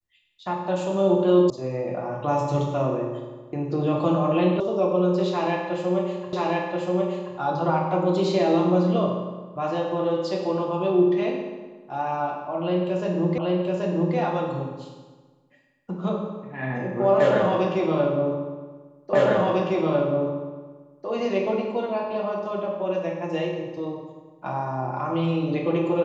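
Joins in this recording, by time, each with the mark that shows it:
1.50 s: sound stops dead
4.60 s: sound stops dead
6.33 s: repeat of the last 1.03 s
13.38 s: repeat of the last 0.78 s
19.13 s: repeat of the last 1.95 s

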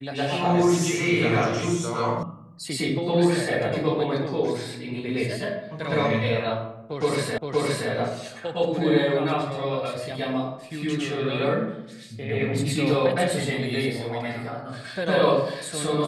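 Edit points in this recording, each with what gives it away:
2.23 s: sound stops dead
7.38 s: repeat of the last 0.52 s

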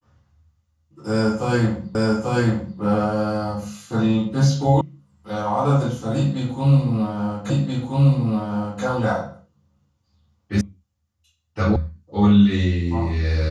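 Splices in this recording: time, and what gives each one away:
1.95 s: repeat of the last 0.84 s
4.81 s: sound stops dead
7.50 s: repeat of the last 1.33 s
10.61 s: sound stops dead
11.76 s: sound stops dead

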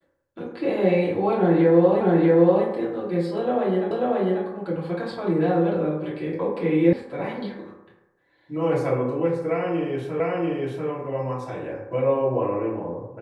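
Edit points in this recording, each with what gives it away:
2.01 s: repeat of the last 0.64 s
3.91 s: repeat of the last 0.54 s
6.93 s: sound stops dead
10.20 s: repeat of the last 0.69 s

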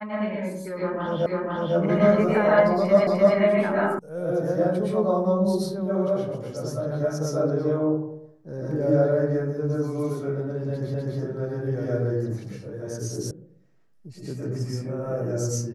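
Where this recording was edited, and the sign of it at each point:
1.26 s: repeat of the last 0.5 s
3.07 s: repeat of the last 0.3 s
3.99 s: sound stops dead
10.94 s: repeat of the last 0.25 s
13.31 s: sound stops dead

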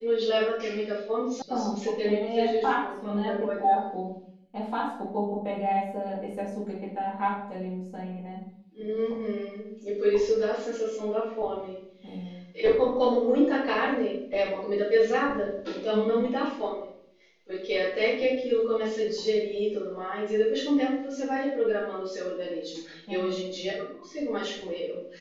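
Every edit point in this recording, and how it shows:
1.42 s: sound stops dead

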